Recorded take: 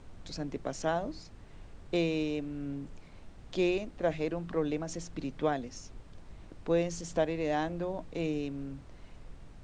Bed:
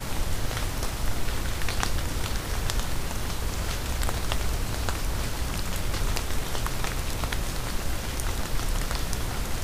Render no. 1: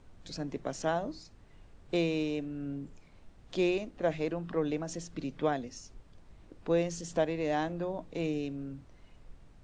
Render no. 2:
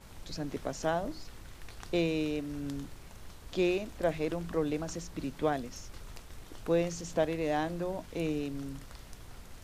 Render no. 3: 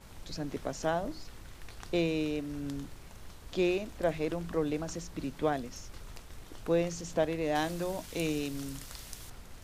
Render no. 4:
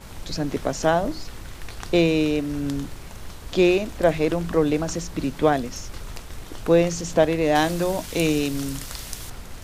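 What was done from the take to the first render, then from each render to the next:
noise print and reduce 6 dB
add bed -20.5 dB
7.55–9.3 high shelf 2900 Hz +12 dB
gain +11 dB

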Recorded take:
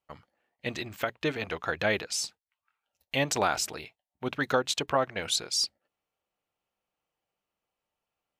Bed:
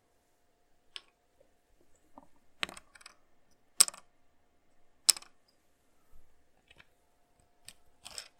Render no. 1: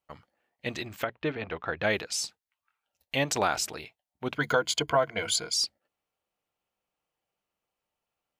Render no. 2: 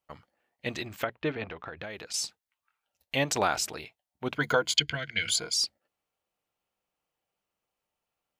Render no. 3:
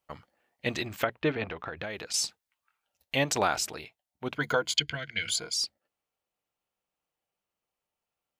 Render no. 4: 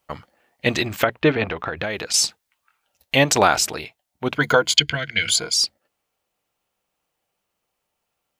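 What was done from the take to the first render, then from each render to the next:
1.04–1.83 air absorption 270 m; 4.35–5.54 ripple EQ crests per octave 1.8, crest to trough 12 dB
1.46–2.14 compressor, threshold -36 dBFS; 4.77–5.29 EQ curve 160 Hz 0 dB, 1100 Hz -23 dB, 1600 Hz +3 dB, 4200 Hz +9 dB, 13000 Hz -11 dB
vocal rider within 3 dB 2 s
gain +10.5 dB; limiter -1 dBFS, peak gain reduction 2 dB

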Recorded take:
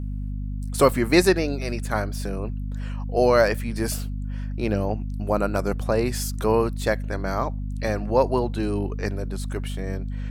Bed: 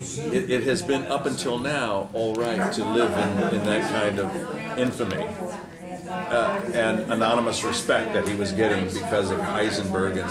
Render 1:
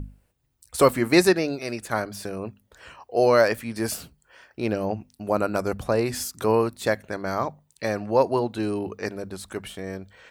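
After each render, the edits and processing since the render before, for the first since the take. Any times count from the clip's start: notches 50/100/150/200/250 Hz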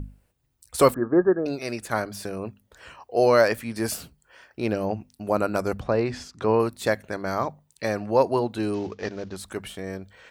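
0.94–1.46 rippled Chebyshev low-pass 1700 Hz, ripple 6 dB; 5.8–6.6 air absorption 150 m; 8.74–9.36 CVSD 32 kbps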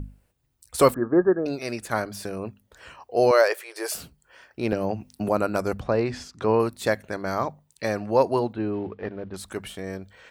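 3.31–3.95 brick-wall FIR high-pass 340 Hz; 4.72–5.29 three-band squash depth 100%; 8.53–9.34 air absorption 480 m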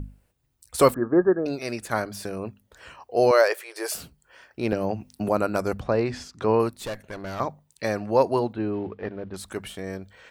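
6.71–7.4 tube stage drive 28 dB, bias 0.55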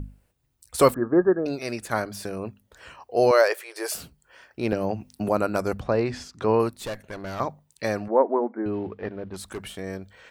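8.08–8.66 brick-wall FIR band-pass 210–2300 Hz; 9.3–9.72 hard clip -28.5 dBFS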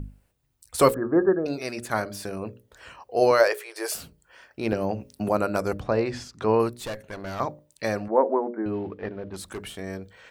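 notches 60/120/180/240/300/360/420/480/540/600 Hz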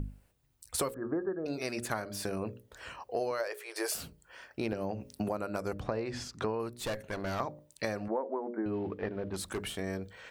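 compressor 12:1, threshold -30 dBFS, peak gain reduction 18.5 dB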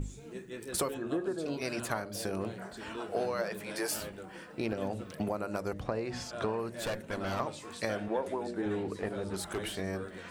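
add bed -20 dB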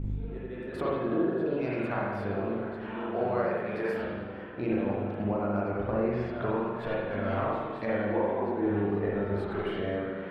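air absorption 460 m; spring tank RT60 1.4 s, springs 40/49 ms, chirp 50 ms, DRR -5.5 dB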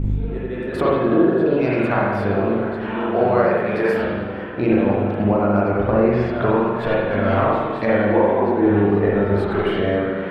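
gain +12 dB

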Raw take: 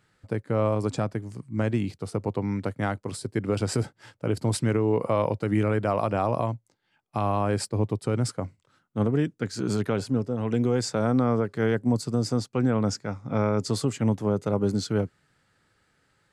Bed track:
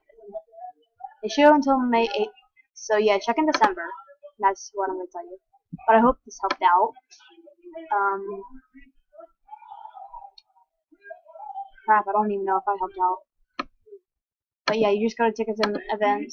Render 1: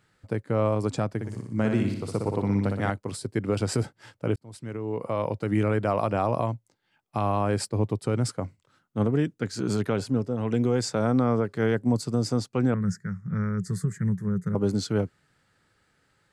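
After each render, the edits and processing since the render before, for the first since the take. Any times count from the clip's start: 1.13–2.9 flutter echo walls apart 10.3 m, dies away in 0.76 s; 4.36–5.63 fade in; 12.74–14.55 EQ curve 130 Hz 0 dB, 180 Hz +11 dB, 260 Hz -17 dB, 390 Hz -8 dB, 710 Hz -27 dB, 1800 Hz +5 dB, 2700 Hz -26 dB, 6800 Hz -7 dB, 13000 Hz -2 dB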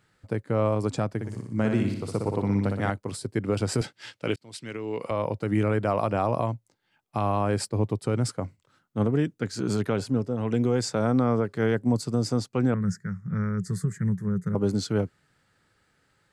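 3.81–5.11 weighting filter D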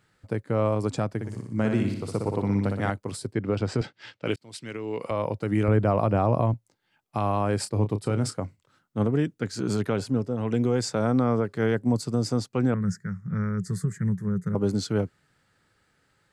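3.33–4.26 air absorption 120 m; 5.68–6.54 tilt -2 dB/oct; 7.61–8.38 doubler 29 ms -9.5 dB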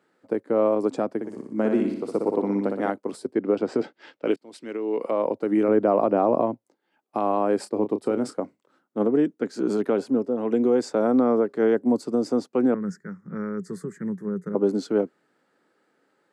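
HPF 260 Hz 24 dB/oct; tilt shelf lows +8 dB, about 1200 Hz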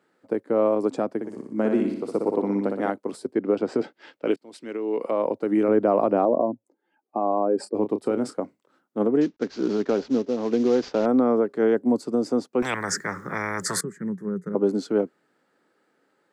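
6.25–7.75 spectral contrast raised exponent 1.6; 9.21–11.06 CVSD 32 kbps; 12.62–13.81 spectral compressor 10:1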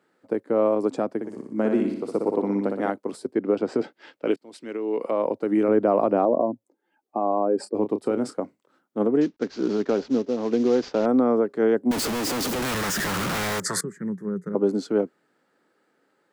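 11.91–13.6 infinite clipping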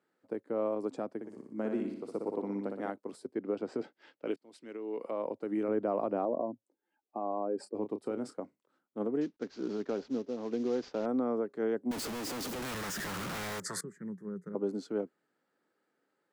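gain -11.5 dB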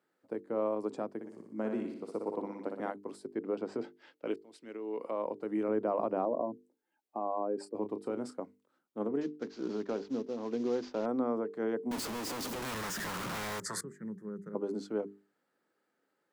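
notches 50/100/150/200/250/300/350/400/450 Hz; dynamic EQ 1000 Hz, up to +4 dB, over -58 dBFS, Q 4.7

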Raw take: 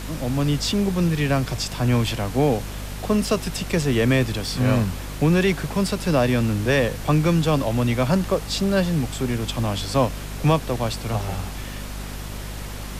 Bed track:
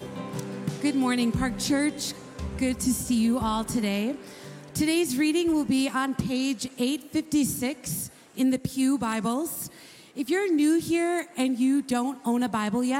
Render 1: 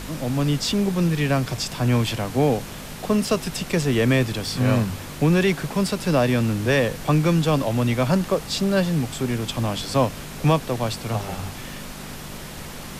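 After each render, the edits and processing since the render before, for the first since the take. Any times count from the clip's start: de-hum 50 Hz, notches 2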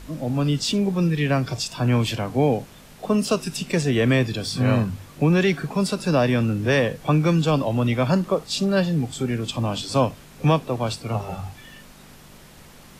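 noise print and reduce 11 dB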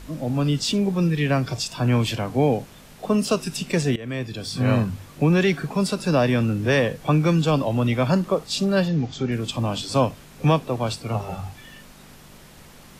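3.96–4.72 fade in, from -20.5 dB; 8.88–9.32 steep low-pass 6800 Hz 72 dB/oct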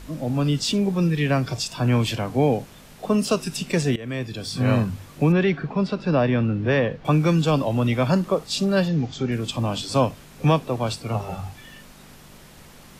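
5.32–7.05 air absorption 230 m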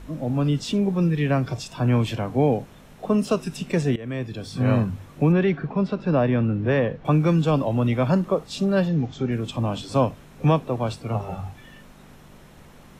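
high shelf 2500 Hz -9 dB; notch 4700 Hz, Q 13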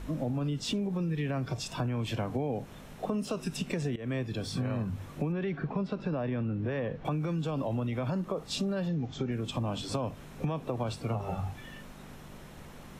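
limiter -16.5 dBFS, peak gain reduction 7.5 dB; compressor 6:1, threshold -29 dBFS, peak gain reduction 9 dB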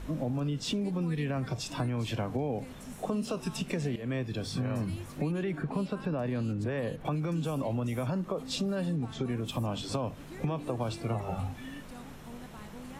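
add bed track -22.5 dB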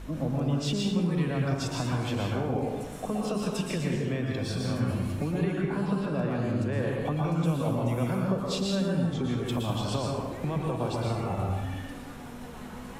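plate-style reverb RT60 1.1 s, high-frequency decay 0.6×, pre-delay 0.105 s, DRR -2 dB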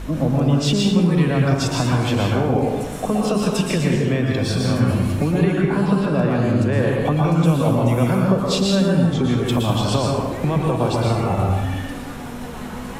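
gain +10.5 dB

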